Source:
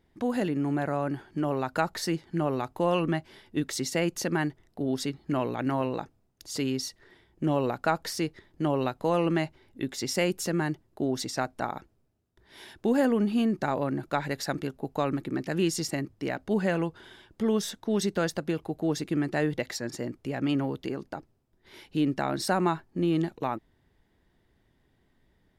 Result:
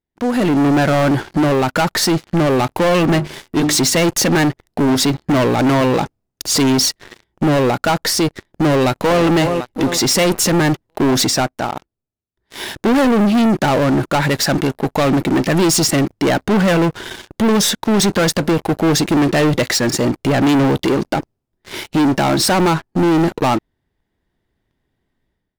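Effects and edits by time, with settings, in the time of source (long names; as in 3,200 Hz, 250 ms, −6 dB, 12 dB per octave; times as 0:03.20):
0:03.01–0:03.78: mains-hum notches 50/100/150/200/250/300/350 Hz
0:08.72–0:09.23: delay throw 370 ms, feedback 50%, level −13.5 dB
0:11.20–0:12.72: duck −11.5 dB, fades 0.38 s
whole clip: automatic gain control gain up to 16 dB; leveller curve on the samples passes 5; level −9 dB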